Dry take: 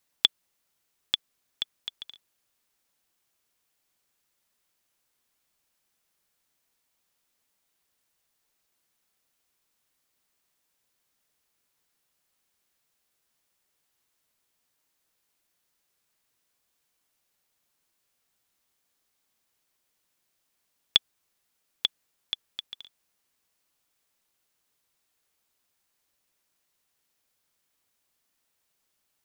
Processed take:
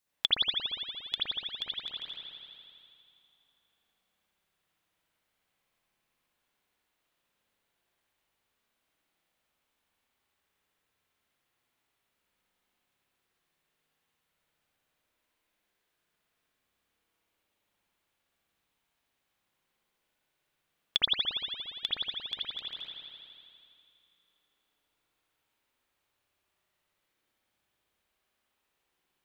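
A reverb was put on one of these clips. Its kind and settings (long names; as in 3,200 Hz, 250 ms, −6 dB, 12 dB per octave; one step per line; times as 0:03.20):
spring reverb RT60 2.6 s, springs 58 ms, chirp 35 ms, DRR −9.5 dB
level −8 dB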